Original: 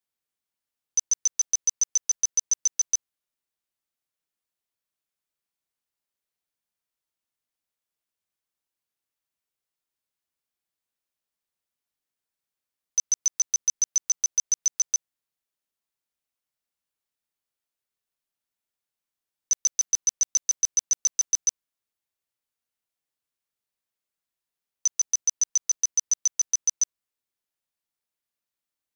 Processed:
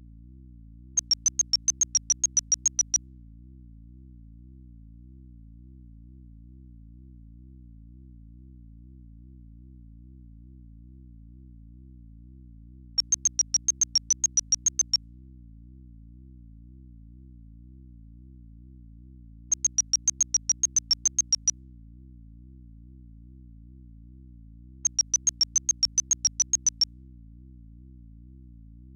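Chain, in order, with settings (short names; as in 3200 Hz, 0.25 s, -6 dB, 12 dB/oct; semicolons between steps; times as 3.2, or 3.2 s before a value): low-pass opened by the level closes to 1400 Hz, open at -22.5 dBFS; hum 60 Hz, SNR 16 dB; wow and flutter 140 cents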